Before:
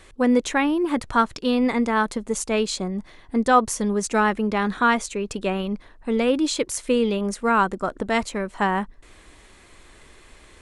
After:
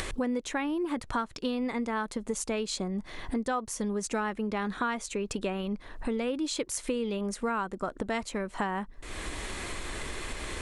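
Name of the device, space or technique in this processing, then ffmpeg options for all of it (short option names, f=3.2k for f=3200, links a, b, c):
upward and downward compression: -af "acompressor=mode=upward:threshold=-27dB:ratio=2.5,acompressor=threshold=-32dB:ratio=5,volume=2.5dB"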